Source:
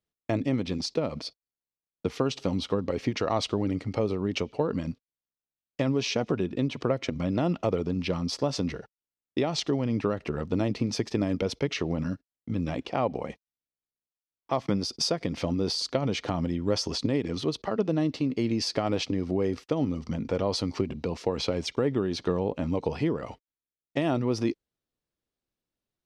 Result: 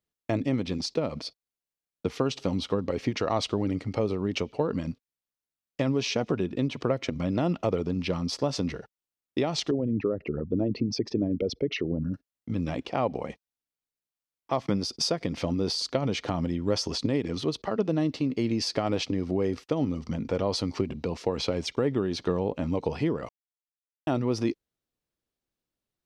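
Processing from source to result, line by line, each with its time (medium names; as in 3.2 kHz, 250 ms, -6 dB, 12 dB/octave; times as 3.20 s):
9.71–12.14 s: resonances exaggerated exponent 2
23.29–24.07 s: mute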